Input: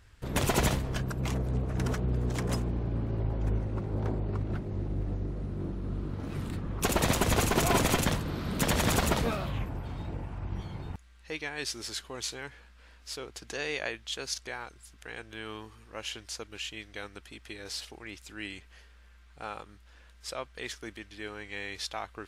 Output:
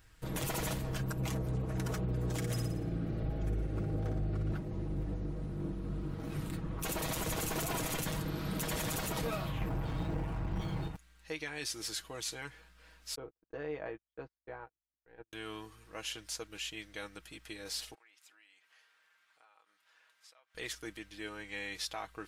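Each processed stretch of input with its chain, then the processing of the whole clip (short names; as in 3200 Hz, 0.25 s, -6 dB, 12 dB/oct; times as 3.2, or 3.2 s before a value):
2.36–4.52 bell 970 Hz -14.5 dB 0.25 oct + flutter echo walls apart 10 m, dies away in 0.6 s
9.61–10.88 high shelf 7100 Hz -8 dB + sample leveller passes 2
13.15–15.33 LPF 1000 Hz + gate -45 dBFS, range -42 dB
17.94–20.55 high shelf 4800 Hz -9 dB + compressor 16:1, threshold -53 dBFS + HPF 880 Hz
whole clip: high shelf 11000 Hz +12 dB; comb 6.3 ms, depth 55%; limiter -22.5 dBFS; gain -4 dB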